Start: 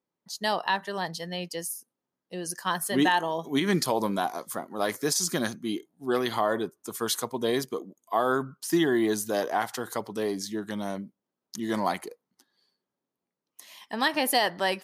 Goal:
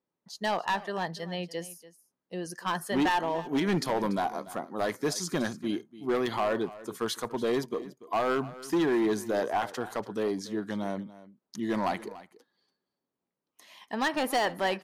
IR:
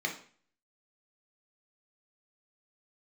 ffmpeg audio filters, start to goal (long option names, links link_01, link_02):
-af "lowpass=frequency=2700:poles=1,volume=22dB,asoftclip=hard,volume=-22dB,aecho=1:1:288:0.133"